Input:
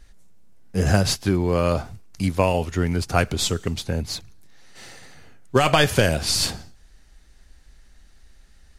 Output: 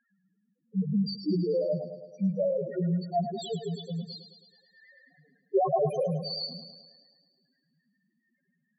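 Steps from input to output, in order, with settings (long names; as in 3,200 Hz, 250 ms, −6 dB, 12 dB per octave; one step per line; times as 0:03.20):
Butterworth high-pass 150 Hz 96 dB per octave
spectral peaks only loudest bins 1
feedback echo with a high-pass in the loop 107 ms, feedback 64%, high-pass 190 Hz, level −9.5 dB
level +3.5 dB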